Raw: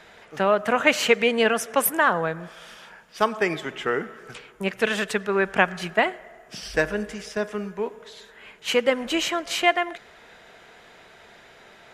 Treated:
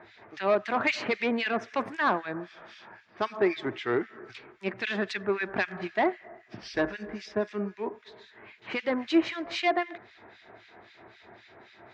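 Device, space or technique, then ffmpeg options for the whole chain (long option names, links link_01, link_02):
guitar amplifier with harmonic tremolo: -filter_complex "[0:a]acrossover=split=1800[link_01][link_02];[link_01]aeval=exprs='val(0)*(1-1/2+1/2*cos(2*PI*3.8*n/s))':channel_layout=same[link_03];[link_02]aeval=exprs='val(0)*(1-1/2-1/2*cos(2*PI*3.8*n/s))':channel_layout=same[link_04];[link_03][link_04]amix=inputs=2:normalize=0,asoftclip=type=tanh:threshold=-18.5dB,highpass=83,equalizer=frequency=110:width_type=q:width=4:gain=10,equalizer=frequency=160:width_type=q:width=4:gain=-10,equalizer=frequency=340:width_type=q:width=4:gain=7,equalizer=frequency=490:width_type=q:width=4:gain=-8,equalizer=frequency=1400:width_type=q:width=4:gain=-4,equalizer=frequency=3000:width_type=q:width=4:gain=-8,lowpass=frequency=4500:width=0.5412,lowpass=frequency=4500:width=1.3066,volume=3dB"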